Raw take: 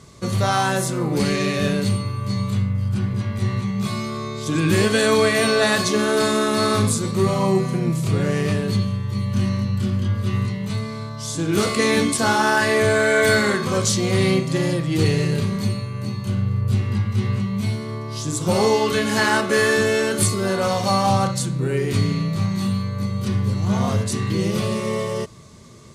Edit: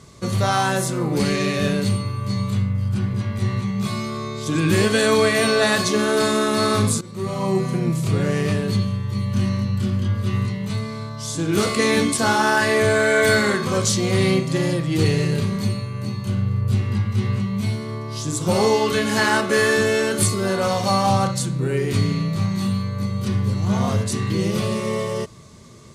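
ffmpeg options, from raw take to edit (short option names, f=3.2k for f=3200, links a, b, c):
-filter_complex "[0:a]asplit=2[a][b];[a]atrim=end=7.01,asetpts=PTS-STARTPTS,afade=t=out:st=7.006:d=0.004:c=hsin:silence=0.125893[c];[b]atrim=start=7.01,asetpts=PTS-STARTPTS,afade=t=in:d=0.69:silence=0.125893[d];[c][d]concat=n=2:v=0:a=1"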